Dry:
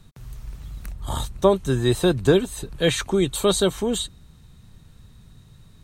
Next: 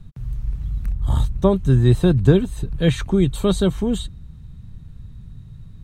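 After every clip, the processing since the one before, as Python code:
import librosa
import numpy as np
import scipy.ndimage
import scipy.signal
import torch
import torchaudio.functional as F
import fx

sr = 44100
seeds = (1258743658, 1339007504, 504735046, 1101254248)

y = fx.bass_treble(x, sr, bass_db=14, treble_db=-6)
y = y * librosa.db_to_amplitude(-3.0)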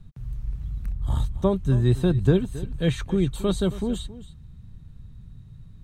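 y = x + 10.0 ** (-16.5 / 20.0) * np.pad(x, (int(271 * sr / 1000.0), 0))[:len(x)]
y = y * librosa.db_to_amplitude(-5.5)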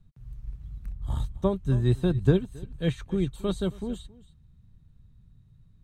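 y = fx.upward_expand(x, sr, threshold_db=-35.0, expansion=1.5)
y = y * librosa.db_to_amplitude(-1.0)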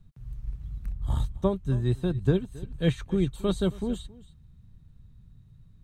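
y = fx.rider(x, sr, range_db=3, speed_s=0.5)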